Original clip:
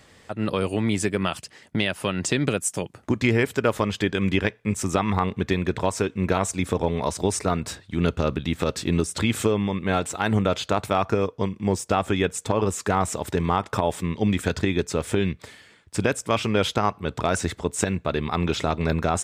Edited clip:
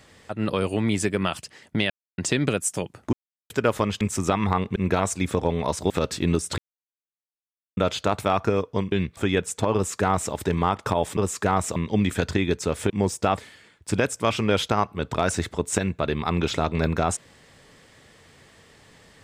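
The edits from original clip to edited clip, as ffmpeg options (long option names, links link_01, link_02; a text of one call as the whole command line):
ffmpeg -i in.wav -filter_complex "[0:a]asplit=16[link_01][link_02][link_03][link_04][link_05][link_06][link_07][link_08][link_09][link_10][link_11][link_12][link_13][link_14][link_15][link_16];[link_01]atrim=end=1.9,asetpts=PTS-STARTPTS,afade=type=out:start_time=1.896:duration=0.004:curve=hsin[link_17];[link_02]atrim=start=1.9:end=2.18,asetpts=PTS-STARTPTS,volume=0[link_18];[link_03]atrim=start=2.18:end=3.13,asetpts=PTS-STARTPTS,afade=type=in:duration=0.004:curve=hsin,afade=type=out:start_time=0.946:duration=0.004:curve=hsin[link_19];[link_04]atrim=start=3.13:end=3.5,asetpts=PTS-STARTPTS,volume=0[link_20];[link_05]atrim=start=3.5:end=4.012,asetpts=PTS-STARTPTS,afade=type=in:duration=0.004:curve=hsin[link_21];[link_06]atrim=start=4.668:end=5.422[link_22];[link_07]atrim=start=6.138:end=7.282[link_23];[link_08]atrim=start=8.548:end=9.23,asetpts=PTS-STARTPTS,afade=type=out:start_time=0.678:duration=0.004:curve=hsin[link_24];[link_09]atrim=start=9.23:end=10.42,asetpts=PTS-STARTPTS,volume=0[link_25];[link_10]atrim=start=10.42:end=11.572,asetpts=PTS-STARTPTS,afade=type=in:duration=0.004:curve=hsin[link_26];[link_11]atrim=start=15.178:end=15.432[link_27];[link_12]atrim=start=12.038:end=14.042[link_28];[link_13]atrim=start=12.608:end=13.202[link_29];[link_14]atrim=start=14.038:end=15.182[link_30];[link_15]atrim=start=11.568:end=12.042[link_31];[link_16]atrim=start=15.428[link_32];[link_17][link_18][link_19][link_20][link_21]concat=n=5:v=0:a=1[link_33];[link_33][link_22]acrossfade=duration=0.004:curve1=hsin:curve2=hsin[link_34];[link_34][link_23]acrossfade=duration=0.004:curve1=hsin:curve2=hsin[link_35];[link_24][link_25][link_26]concat=n=3:v=0:a=1[link_36];[link_35][link_36]acrossfade=duration=0.004:curve1=hsin:curve2=hsin[link_37];[link_37][link_27]acrossfade=duration=0.004:curve1=hsin:curve2=hsin[link_38];[link_38][link_28]acrossfade=duration=0.004:curve1=hsin:curve2=hsin[link_39];[link_39][link_29]acrossfade=duration=0.004:curve1=hsin:curve2=hsin[link_40];[link_40][link_30]acrossfade=duration=0.004:curve1=hsin:curve2=hsin[link_41];[link_41][link_31]acrossfade=duration=0.004:curve1=hsin:curve2=hsin[link_42];[link_42][link_32]acrossfade=duration=0.004:curve1=hsin:curve2=hsin" out.wav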